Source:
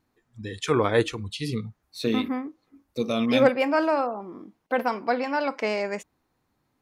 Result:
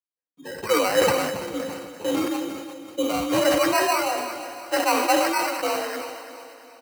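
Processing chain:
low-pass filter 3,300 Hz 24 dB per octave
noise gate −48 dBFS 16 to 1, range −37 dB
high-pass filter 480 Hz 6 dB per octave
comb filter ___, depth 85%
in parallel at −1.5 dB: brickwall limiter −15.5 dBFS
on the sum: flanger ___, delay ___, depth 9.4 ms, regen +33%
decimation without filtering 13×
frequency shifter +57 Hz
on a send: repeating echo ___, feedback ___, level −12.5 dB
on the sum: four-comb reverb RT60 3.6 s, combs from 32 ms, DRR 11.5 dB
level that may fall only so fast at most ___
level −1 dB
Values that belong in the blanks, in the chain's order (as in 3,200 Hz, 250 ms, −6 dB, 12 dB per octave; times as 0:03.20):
4.3 ms, 1.7 Hz, 6.7 ms, 338 ms, 44%, 37 dB per second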